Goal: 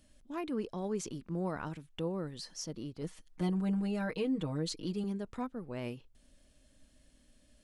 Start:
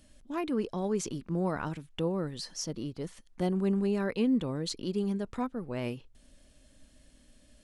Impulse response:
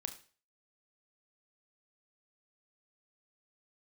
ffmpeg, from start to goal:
-filter_complex "[0:a]asettb=1/sr,asplit=3[s0][s1][s2];[s0]atrim=end=3.014[s3];[s1]atrim=start=3.01:end=5.04,asetpts=PTS-STARTPTS,afade=t=in:d=0.004:c=qsin,afade=t=out:st=2.026:d=0.004:c=qsin,aecho=1:1:6.4:0.85,atrim=end_sample=89523[s4];[s2]atrim=start=5.036[s5];[s3][s4]acrossfade=d=0.004:c1=hsin:c2=qsin[s6];[s6][s5]acrossfade=d=0.004:c1=qsin:c2=hsin,volume=0.562"

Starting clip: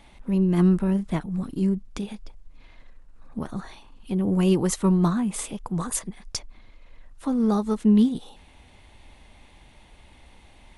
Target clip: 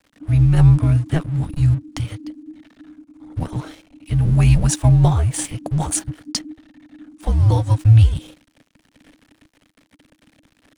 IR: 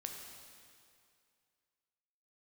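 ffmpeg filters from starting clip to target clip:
-filter_complex "[0:a]acrossover=split=290[s0][s1];[s1]acompressor=threshold=0.0708:ratio=6[s2];[s0][s2]amix=inputs=2:normalize=0,aeval=exprs='sgn(val(0))*max(abs(val(0))-0.00473,0)':c=same,afreqshift=-320,volume=2.51"

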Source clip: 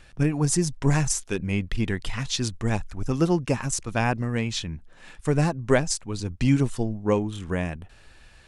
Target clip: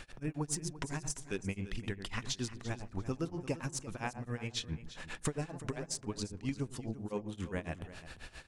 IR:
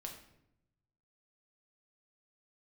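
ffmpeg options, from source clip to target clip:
-filter_complex "[0:a]lowshelf=f=130:g=-5.5,acompressor=threshold=0.0126:ratio=8,asplit=2[s0][s1];[s1]adelay=81,lowpass=f=1100:p=1,volume=0.355,asplit=2[s2][s3];[s3]adelay=81,lowpass=f=1100:p=1,volume=0.42,asplit=2[s4][s5];[s5]adelay=81,lowpass=f=1100:p=1,volume=0.42,asplit=2[s6][s7];[s7]adelay=81,lowpass=f=1100:p=1,volume=0.42,asplit=2[s8][s9];[s9]adelay=81,lowpass=f=1100:p=1,volume=0.42[s10];[s2][s4][s6][s8][s10]amix=inputs=5:normalize=0[s11];[s0][s11]amix=inputs=2:normalize=0,tremolo=f=7.4:d=0.98,asplit=2[s12][s13];[s13]aecho=0:1:344|688:0.178|0.0356[s14];[s12][s14]amix=inputs=2:normalize=0,aeval=exprs='0.562*(cos(1*acos(clip(val(0)/0.562,-1,1)))-cos(1*PI/2))+0.0708*(cos(6*acos(clip(val(0)/0.562,-1,1)))-cos(6*PI/2))':c=same,volume=2.11"

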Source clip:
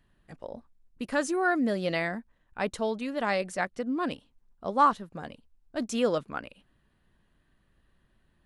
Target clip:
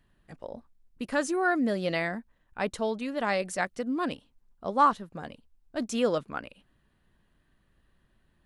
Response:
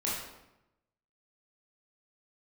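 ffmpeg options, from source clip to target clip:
-filter_complex "[0:a]asettb=1/sr,asplit=3[s0][s1][s2];[s0]atrim=end=3.434[s3];[s1]atrim=start=3.43:end=4.05,asetpts=PTS-STARTPTS,afade=t=in:d=0.004:c=qsin,afade=t=out:st=0.616:d=0.004:c=qsin,highshelf=f=4500:g=6[s4];[s2]atrim=start=4.046[s5];[s3][s4]acrossfade=d=0.004:c1=hsin:c2=qsin[s6];[s6][s5]acrossfade=d=0.004:c1=qsin:c2=hsin"

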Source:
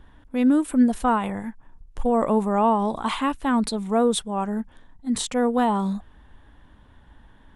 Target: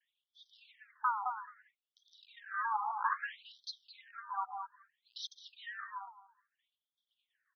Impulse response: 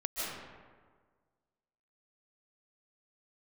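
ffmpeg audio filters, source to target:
-filter_complex "[0:a]afwtdn=0.0398,agate=range=0.0224:threshold=0.00398:ratio=3:detection=peak,aphaser=in_gain=1:out_gain=1:delay=3.2:decay=0.55:speed=0.97:type=sinusoidal,acrossover=split=500|1500[s0][s1][s2];[s1]acompressor=threshold=0.0224:ratio=6[s3];[s0][s3][s2]amix=inputs=3:normalize=0,tiltshelf=f=1500:g=-6.5,asplit=2[s4][s5];[s5]adelay=214,lowpass=f=2300:p=1,volume=0.501,asplit=2[s6][s7];[s7]adelay=214,lowpass=f=2300:p=1,volume=0.17,asplit=2[s8][s9];[s9]adelay=214,lowpass=f=2300:p=1,volume=0.17[s10];[s6][s8][s10]amix=inputs=3:normalize=0[s11];[s4][s11]amix=inputs=2:normalize=0,afftfilt=real='re*between(b*sr/1024,1000*pow(4500/1000,0.5+0.5*sin(2*PI*0.61*pts/sr))/1.41,1000*pow(4500/1000,0.5+0.5*sin(2*PI*0.61*pts/sr))*1.41)':imag='im*between(b*sr/1024,1000*pow(4500/1000,0.5+0.5*sin(2*PI*0.61*pts/sr))/1.41,1000*pow(4500/1000,0.5+0.5*sin(2*PI*0.61*pts/sr))*1.41)':win_size=1024:overlap=0.75"

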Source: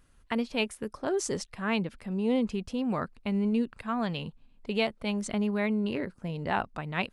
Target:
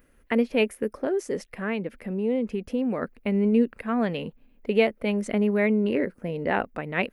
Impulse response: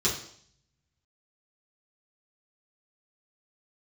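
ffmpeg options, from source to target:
-filter_complex "[0:a]aemphasis=mode=production:type=50kf,asettb=1/sr,asplit=3[s0][s1][s2];[s0]atrim=end=1.024[s3];[s1]atrim=start=1.02:end=3.03,asetpts=PTS-STARTPTS,afade=t=in:d=0.004:c=qsin,afade=t=out:st=2.006:d=0.004:c=qsin,acompressor=threshold=0.0316:ratio=6[s4];[s2]atrim=start=3.026[s5];[s3][s4]acrossfade=d=0.004:c1=hsin:c2=qsin[s6];[s6][s5]acrossfade=d=0.004:c1=qsin:c2=hsin,equalizer=f=125:t=o:w=1:g=-4,equalizer=f=250:t=o:w=1:g=6,equalizer=f=500:t=o:w=1:g=10,equalizer=f=1000:t=o:w=1:g=-4,equalizer=f=2000:t=o:w=1:g=8,equalizer=f=4000:t=o:w=1:g=-8,equalizer=f=8000:t=o:w=1:g=-12"

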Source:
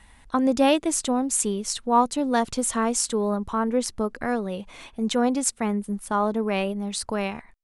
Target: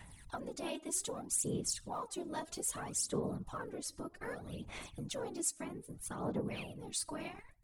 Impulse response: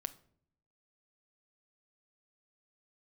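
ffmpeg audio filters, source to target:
-filter_complex "[0:a]asplit=2[s0][s1];[1:a]atrim=start_sample=2205,afade=t=out:st=0.14:d=0.01,atrim=end_sample=6615,asetrate=26460,aresample=44100[s2];[s1][s2]afir=irnorm=-1:irlink=0,volume=0.335[s3];[s0][s3]amix=inputs=2:normalize=0,afftfilt=real='hypot(re,im)*cos(2*PI*random(0))':imag='hypot(re,im)*sin(2*PI*random(1))':win_size=512:overlap=0.75,acompressor=threshold=0.0112:ratio=3,aphaser=in_gain=1:out_gain=1:delay=3.2:decay=0.65:speed=0.63:type=sinusoidal,aemphasis=mode=production:type=cd,volume=0.531"

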